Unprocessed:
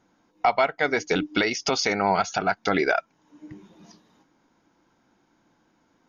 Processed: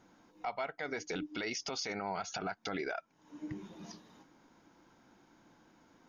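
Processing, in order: compression 2.5:1, threshold -38 dBFS, peak gain reduction 14.5 dB; peak limiter -29 dBFS, peak gain reduction 10 dB; trim +1.5 dB

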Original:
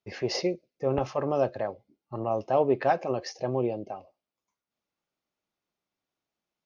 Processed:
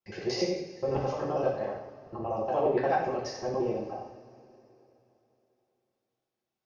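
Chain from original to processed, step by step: time reversed locally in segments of 59 ms; two-slope reverb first 0.68 s, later 3.3 s, from -18 dB, DRR -4.5 dB; trim -7.5 dB

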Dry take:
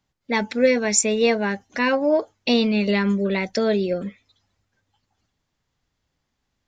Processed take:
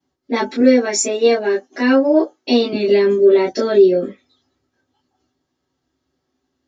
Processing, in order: 0.60–2.73 s: high-pass 250 Hz 12 dB/octave; reverberation, pre-delay 3 ms, DRR -12.5 dB; trim -15.5 dB

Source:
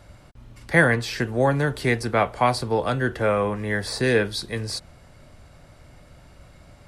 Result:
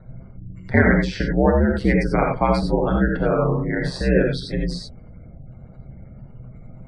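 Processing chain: spectral gate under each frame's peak -20 dB strong; bass shelf 290 Hz +10.5 dB; ring modulator 67 Hz; distance through air 62 m; gated-style reverb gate 110 ms rising, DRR 1 dB

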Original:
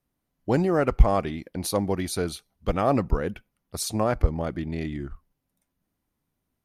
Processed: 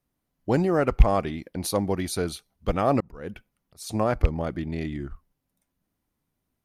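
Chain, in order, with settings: rattle on loud lows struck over -12 dBFS, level -18 dBFS; 3.00–3.89 s: slow attack 297 ms

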